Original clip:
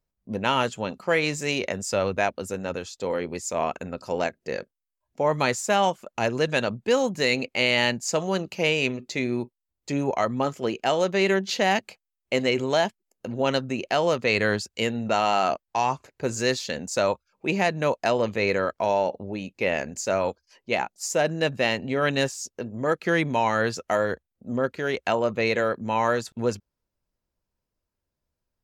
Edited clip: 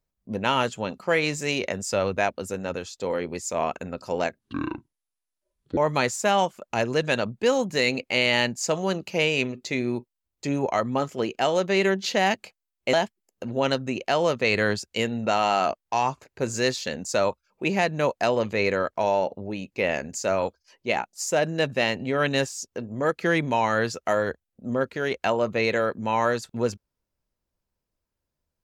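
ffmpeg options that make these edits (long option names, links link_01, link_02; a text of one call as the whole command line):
ffmpeg -i in.wav -filter_complex "[0:a]asplit=4[link_01][link_02][link_03][link_04];[link_01]atrim=end=4.394[link_05];[link_02]atrim=start=4.39:end=5.22,asetpts=PTS-STARTPTS,asetrate=26460,aresample=44100[link_06];[link_03]atrim=start=5.216:end=12.382[link_07];[link_04]atrim=start=12.758[link_08];[link_05][link_06]acrossfade=duration=0.004:curve1=hsin:curve2=hsin[link_09];[link_09][link_07]acrossfade=duration=0.004:curve1=hsin:curve2=hsin[link_10];[link_10][link_08]acrossfade=duration=0.004:curve1=hsin:curve2=hsin" out.wav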